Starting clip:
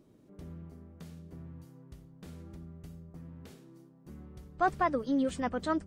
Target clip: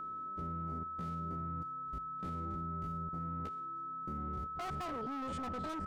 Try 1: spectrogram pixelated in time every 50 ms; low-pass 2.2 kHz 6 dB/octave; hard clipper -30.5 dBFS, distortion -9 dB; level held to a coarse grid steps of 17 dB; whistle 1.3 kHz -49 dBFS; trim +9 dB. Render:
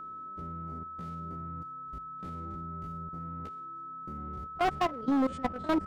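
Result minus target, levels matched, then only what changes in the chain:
hard clipper: distortion -8 dB
change: hard clipper -40.5 dBFS, distortion -2 dB

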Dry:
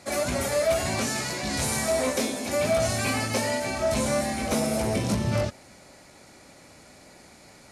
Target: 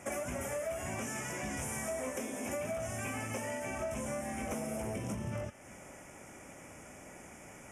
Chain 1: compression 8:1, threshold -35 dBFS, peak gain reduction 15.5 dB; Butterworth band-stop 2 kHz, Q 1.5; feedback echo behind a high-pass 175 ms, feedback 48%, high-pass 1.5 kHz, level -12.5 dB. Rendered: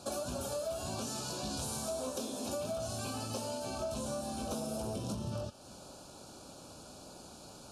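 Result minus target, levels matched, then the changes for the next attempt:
2 kHz band -10.0 dB
change: Butterworth band-stop 4.2 kHz, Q 1.5

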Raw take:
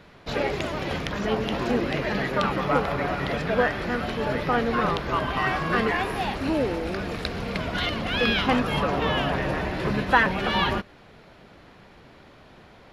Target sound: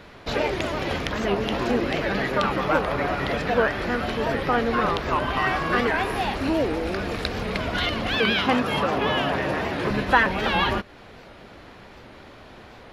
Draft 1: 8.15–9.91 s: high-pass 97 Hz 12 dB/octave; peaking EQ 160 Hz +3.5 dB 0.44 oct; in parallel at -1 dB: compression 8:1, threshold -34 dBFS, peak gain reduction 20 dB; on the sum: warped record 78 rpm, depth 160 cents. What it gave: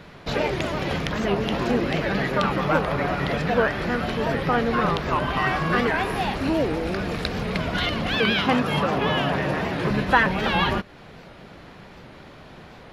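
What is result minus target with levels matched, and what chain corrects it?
125 Hz band +3.5 dB
8.15–9.91 s: high-pass 97 Hz 12 dB/octave; peaking EQ 160 Hz -6 dB 0.44 oct; in parallel at -1 dB: compression 8:1, threshold -34 dBFS, peak gain reduction 20 dB; on the sum: warped record 78 rpm, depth 160 cents

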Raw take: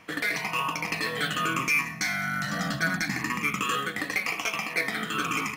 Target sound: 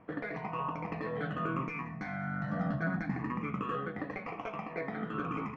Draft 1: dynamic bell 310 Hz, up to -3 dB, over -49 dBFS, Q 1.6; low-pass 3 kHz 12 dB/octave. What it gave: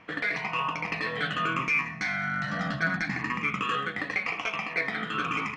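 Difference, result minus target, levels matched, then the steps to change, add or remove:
4 kHz band +12.5 dB
change: low-pass 820 Hz 12 dB/octave

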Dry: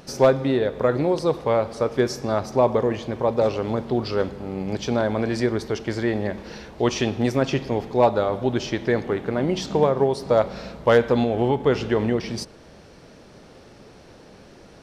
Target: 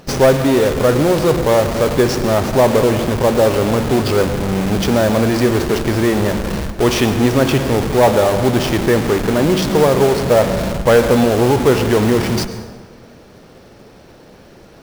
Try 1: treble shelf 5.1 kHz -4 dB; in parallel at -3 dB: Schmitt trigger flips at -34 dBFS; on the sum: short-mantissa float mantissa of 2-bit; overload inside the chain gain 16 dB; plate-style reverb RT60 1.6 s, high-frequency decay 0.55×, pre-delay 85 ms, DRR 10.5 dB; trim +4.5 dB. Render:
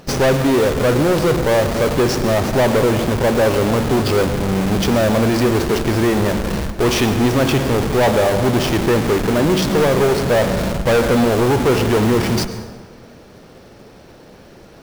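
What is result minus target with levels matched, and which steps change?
overload inside the chain: distortion +14 dB
change: overload inside the chain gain 9 dB

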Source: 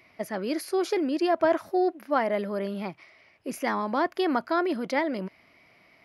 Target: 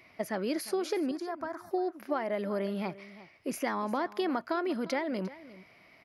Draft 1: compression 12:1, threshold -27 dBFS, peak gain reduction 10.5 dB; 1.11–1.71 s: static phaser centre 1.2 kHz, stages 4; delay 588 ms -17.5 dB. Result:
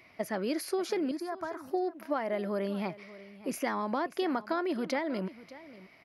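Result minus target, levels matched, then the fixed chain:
echo 237 ms late
compression 12:1, threshold -27 dBFS, peak gain reduction 10.5 dB; 1.11–1.71 s: static phaser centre 1.2 kHz, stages 4; delay 351 ms -17.5 dB

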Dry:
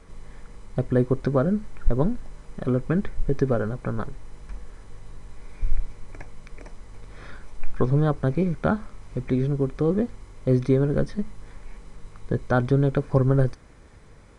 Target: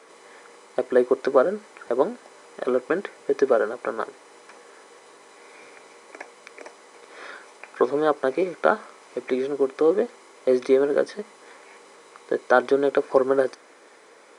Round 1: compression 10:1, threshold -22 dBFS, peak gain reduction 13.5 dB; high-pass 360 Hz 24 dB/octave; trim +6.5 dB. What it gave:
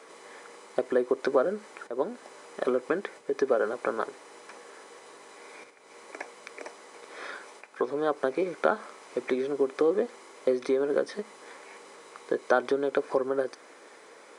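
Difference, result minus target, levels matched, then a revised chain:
compression: peak gain reduction +13.5 dB
high-pass 360 Hz 24 dB/octave; trim +6.5 dB

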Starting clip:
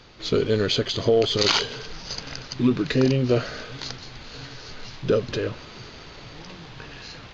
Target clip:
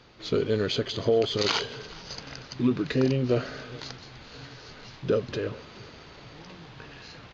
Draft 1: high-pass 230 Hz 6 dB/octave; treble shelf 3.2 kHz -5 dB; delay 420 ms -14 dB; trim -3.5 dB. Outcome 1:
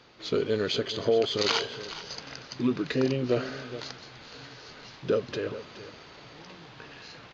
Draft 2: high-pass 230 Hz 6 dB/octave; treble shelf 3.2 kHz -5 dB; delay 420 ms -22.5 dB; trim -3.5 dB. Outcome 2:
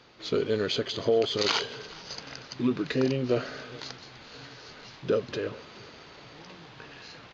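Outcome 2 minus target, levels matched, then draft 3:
125 Hz band -4.0 dB
high-pass 58 Hz 6 dB/octave; treble shelf 3.2 kHz -5 dB; delay 420 ms -22.5 dB; trim -3.5 dB

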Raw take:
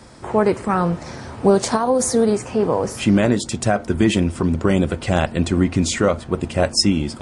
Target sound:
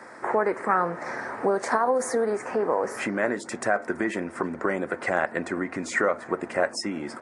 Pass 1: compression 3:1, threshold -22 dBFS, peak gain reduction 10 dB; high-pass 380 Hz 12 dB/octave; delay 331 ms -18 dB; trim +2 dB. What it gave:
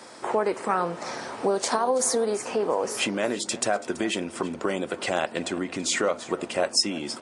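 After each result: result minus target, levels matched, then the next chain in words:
4 kHz band +12.0 dB; echo-to-direct +9.5 dB
compression 3:1, threshold -22 dBFS, peak gain reduction 10 dB; high-pass 380 Hz 12 dB/octave; resonant high shelf 2.4 kHz -9 dB, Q 3; delay 331 ms -18 dB; trim +2 dB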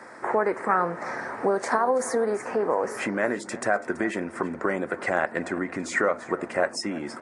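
echo-to-direct +9.5 dB
compression 3:1, threshold -22 dBFS, peak gain reduction 10 dB; high-pass 380 Hz 12 dB/octave; resonant high shelf 2.4 kHz -9 dB, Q 3; delay 331 ms -27.5 dB; trim +2 dB

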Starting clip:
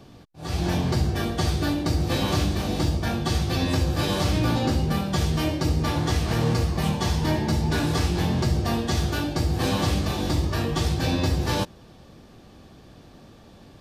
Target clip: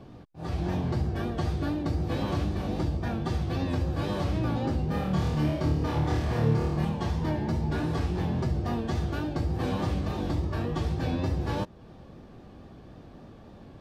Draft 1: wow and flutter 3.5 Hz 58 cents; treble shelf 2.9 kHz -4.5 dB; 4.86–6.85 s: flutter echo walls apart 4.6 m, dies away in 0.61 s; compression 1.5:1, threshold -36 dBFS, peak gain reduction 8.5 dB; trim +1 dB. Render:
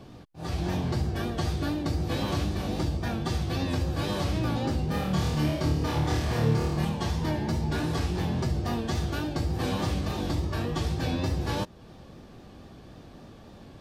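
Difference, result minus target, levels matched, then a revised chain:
8 kHz band +8.0 dB
wow and flutter 3.5 Hz 58 cents; treble shelf 2.9 kHz -14.5 dB; 4.86–6.85 s: flutter echo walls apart 4.6 m, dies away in 0.61 s; compression 1.5:1, threshold -36 dBFS, peak gain reduction 8.5 dB; trim +1 dB

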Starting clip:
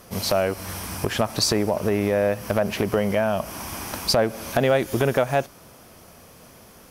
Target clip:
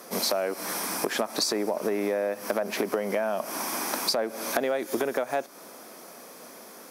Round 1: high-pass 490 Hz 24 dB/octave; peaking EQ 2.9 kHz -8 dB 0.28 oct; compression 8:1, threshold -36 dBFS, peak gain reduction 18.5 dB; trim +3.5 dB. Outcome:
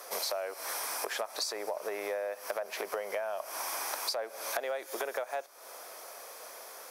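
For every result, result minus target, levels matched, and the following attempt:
250 Hz band -12.0 dB; compression: peak gain reduction +6.5 dB
high-pass 240 Hz 24 dB/octave; peaking EQ 2.9 kHz -8 dB 0.28 oct; compression 8:1, threshold -36 dBFS, peak gain reduction 20 dB; trim +3.5 dB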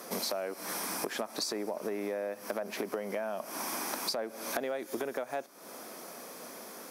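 compression: peak gain reduction +8 dB
high-pass 240 Hz 24 dB/octave; peaking EQ 2.9 kHz -8 dB 0.28 oct; compression 8:1, threshold -27 dBFS, peak gain reduction 12 dB; trim +3.5 dB

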